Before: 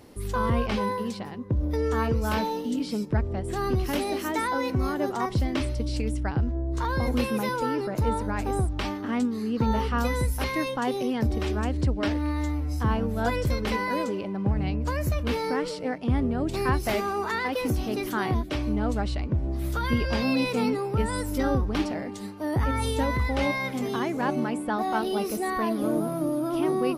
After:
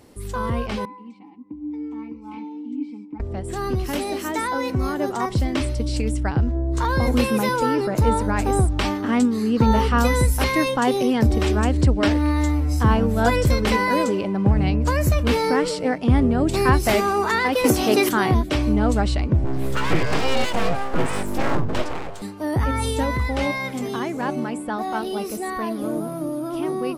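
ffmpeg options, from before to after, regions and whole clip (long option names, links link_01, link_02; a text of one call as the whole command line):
ffmpeg -i in.wav -filter_complex "[0:a]asettb=1/sr,asplit=3[link_01][link_02][link_03];[link_01]atrim=end=0.854[link_04];[link_02]atrim=start=0.85:end=3.2,asetpts=PTS-STARTPTS,afade=type=in:duration=0.004:curve=qsin,afade=type=out:start_time=2.346:duration=0.004:curve=qsin,asplit=3[link_05][link_06][link_07];[link_05]bandpass=frequency=300:width_type=q:width=8,volume=0dB[link_08];[link_06]bandpass=frequency=870:width_type=q:width=8,volume=-6dB[link_09];[link_07]bandpass=frequency=2240:width_type=q:width=8,volume=-9dB[link_10];[link_08][link_09][link_10]amix=inputs=3:normalize=0,aecho=1:1:3.9:0.66,atrim=end_sample=103635[link_11];[link_03]atrim=start=3.196[link_12];[link_04][link_11]acrossfade=duration=0.004:curve1=hsin:curve2=qsin[link_13];[link_13][link_12]acrossfade=duration=0.004:curve1=qsin:curve2=hsin,asettb=1/sr,asplit=3[link_14][link_15][link_16];[link_14]atrim=end=17.644[link_17];[link_15]atrim=start=17.64:end=18.09,asetpts=PTS-STARTPTS,afade=type=in:duration=0.004:curve=qsin,afade=type=out:start_time=0.446:duration=0.004:curve=qsin,highpass=90,bass=frequency=250:gain=-10,treble=frequency=4000:gain=0,acontrast=72[link_18];[link_16]atrim=start=18.086[link_19];[link_17][link_18]acrossfade=duration=0.004:curve1=hsin:curve2=qsin[link_20];[link_20][link_19]acrossfade=duration=0.004:curve1=qsin:curve2=hsin,asettb=1/sr,asplit=3[link_21][link_22][link_23];[link_21]atrim=end=19.444[link_24];[link_22]atrim=start=19.44:end=22.22,asetpts=PTS-STARTPTS,afade=type=in:duration=0.004:curve=qsin,afade=type=out:start_time=2.776:duration=0.004:curve=qsin,bass=frequency=250:gain=1,treble=frequency=4000:gain=-8,aeval=exprs='abs(val(0))':channel_layout=same[link_25];[link_23]atrim=start=22.216[link_26];[link_24][link_25]acrossfade=duration=0.004:curve1=hsin:curve2=qsin[link_27];[link_27][link_26]acrossfade=duration=0.004:curve1=qsin:curve2=hsin,equalizer=frequency=7900:width_type=o:width=0.43:gain=5.5,dynaudnorm=framelen=560:gausssize=21:maxgain=8dB" out.wav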